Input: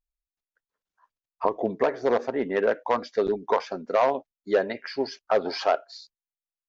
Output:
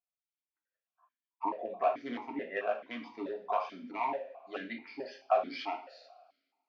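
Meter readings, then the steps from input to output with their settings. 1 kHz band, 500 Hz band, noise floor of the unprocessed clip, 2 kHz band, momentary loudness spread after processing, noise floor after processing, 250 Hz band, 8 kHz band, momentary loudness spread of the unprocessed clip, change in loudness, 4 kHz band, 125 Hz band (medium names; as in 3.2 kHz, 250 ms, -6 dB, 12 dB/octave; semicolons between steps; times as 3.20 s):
-6.0 dB, -12.0 dB, under -85 dBFS, -8.5 dB, 12 LU, under -85 dBFS, -9.5 dB, no reading, 8 LU, -9.5 dB, -10.5 dB, under -15 dB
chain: peaking EQ 400 Hz -12.5 dB 1.2 oct; two-slope reverb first 0.42 s, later 1.8 s, from -22 dB, DRR 0.5 dB; stepped vowel filter 4.6 Hz; trim +4.5 dB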